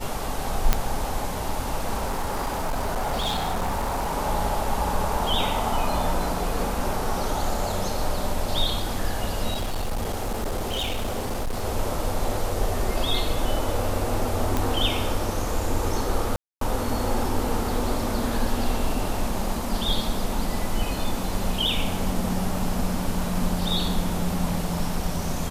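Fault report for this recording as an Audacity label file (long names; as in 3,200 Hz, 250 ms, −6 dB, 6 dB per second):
0.730000	0.730000	click −4 dBFS
2.040000	4.140000	clipping −22 dBFS
9.530000	11.640000	clipping −23 dBFS
14.570000	14.570000	click
16.360000	16.610000	drop-out 253 ms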